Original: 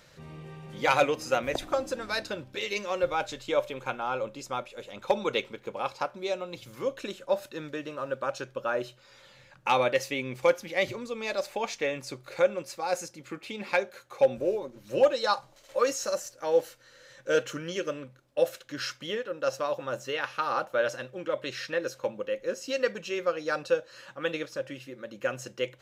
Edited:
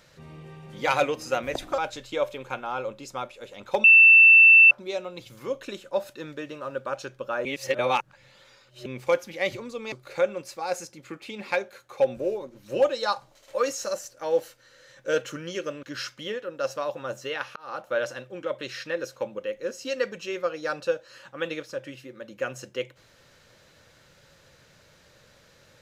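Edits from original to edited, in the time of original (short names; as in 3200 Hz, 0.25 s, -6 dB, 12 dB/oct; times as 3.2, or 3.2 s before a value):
1.78–3.14 cut
5.2–6.07 bleep 2670 Hz -9.5 dBFS
8.81–10.22 reverse
11.28–12.13 cut
18.04–18.66 cut
20.39–20.75 fade in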